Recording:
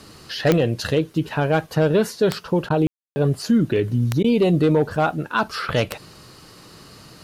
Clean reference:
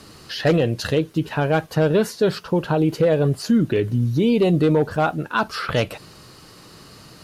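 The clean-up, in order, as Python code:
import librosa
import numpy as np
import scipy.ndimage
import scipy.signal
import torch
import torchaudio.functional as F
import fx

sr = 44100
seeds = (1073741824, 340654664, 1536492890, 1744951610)

y = fx.fix_declick_ar(x, sr, threshold=10.0)
y = fx.fix_ambience(y, sr, seeds[0], print_start_s=6.23, print_end_s=6.73, start_s=2.87, end_s=3.16)
y = fx.fix_interpolate(y, sr, at_s=(2.69, 4.23), length_ms=11.0)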